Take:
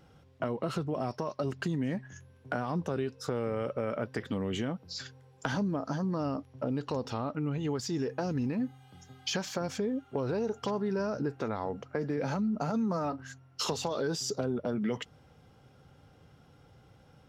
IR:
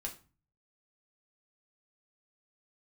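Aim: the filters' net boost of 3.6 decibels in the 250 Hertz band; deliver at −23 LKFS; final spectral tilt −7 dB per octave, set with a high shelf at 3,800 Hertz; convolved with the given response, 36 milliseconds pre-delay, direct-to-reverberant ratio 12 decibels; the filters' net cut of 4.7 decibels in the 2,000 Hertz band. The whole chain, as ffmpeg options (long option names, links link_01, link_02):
-filter_complex "[0:a]equalizer=frequency=250:width_type=o:gain=4.5,equalizer=frequency=2000:width_type=o:gain=-6,highshelf=frequency=3800:gain=-4,asplit=2[link_01][link_02];[1:a]atrim=start_sample=2205,adelay=36[link_03];[link_02][link_03]afir=irnorm=-1:irlink=0,volume=-11dB[link_04];[link_01][link_04]amix=inputs=2:normalize=0,volume=8.5dB"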